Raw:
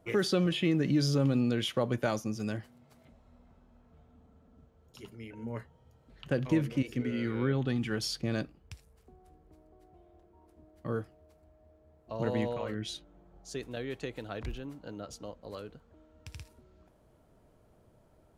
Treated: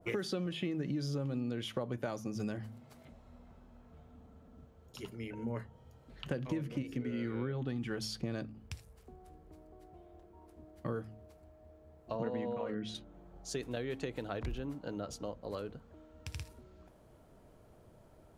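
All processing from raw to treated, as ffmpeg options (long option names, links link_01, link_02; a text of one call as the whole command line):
ffmpeg -i in.wav -filter_complex "[0:a]asettb=1/sr,asplit=3[link_01][link_02][link_03];[link_01]atrim=end=12.154[link_04];[link_02]atrim=start=12.15:end=12.95,asetpts=PTS-STARTPTS,afade=type=in:duration=0.004:curve=qsin,afade=type=out:start_time=0.796:duration=0.004:curve=qsin,highpass=90,aemphasis=mode=reproduction:type=75kf,aecho=1:1:4.2:0.36,atrim=end_sample=35280[link_05];[link_03]atrim=start=12.946[link_06];[link_04][link_05]acrossfade=duration=0.004:curve1=hsin:curve2=qsin[link_07];[link_07][link_06]acrossfade=duration=0.004:curve1=qsin:curve2=hsin,bandreject=frequency=54.24:width_type=h:width=4,bandreject=frequency=108.48:width_type=h:width=4,bandreject=frequency=162.72:width_type=h:width=4,bandreject=frequency=216.96:width_type=h:width=4,bandreject=frequency=271.2:width_type=h:width=4,acompressor=threshold=-37dB:ratio=6,adynamicequalizer=threshold=0.00126:dfrequency=1500:dqfactor=0.7:tfrequency=1500:tqfactor=0.7:attack=5:release=100:ratio=0.375:range=2:mode=cutabove:tftype=highshelf,volume=3.5dB" out.wav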